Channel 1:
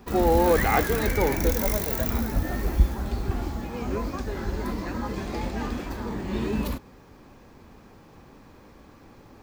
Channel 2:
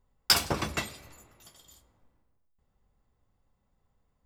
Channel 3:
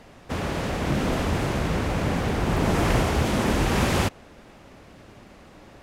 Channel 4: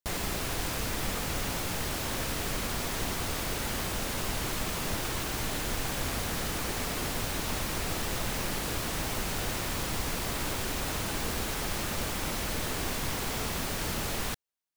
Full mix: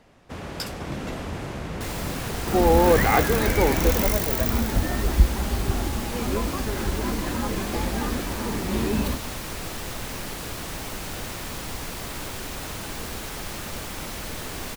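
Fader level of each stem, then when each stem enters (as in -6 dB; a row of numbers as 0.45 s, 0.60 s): +2.5 dB, -11.5 dB, -7.5 dB, -1.0 dB; 2.40 s, 0.30 s, 0.00 s, 1.75 s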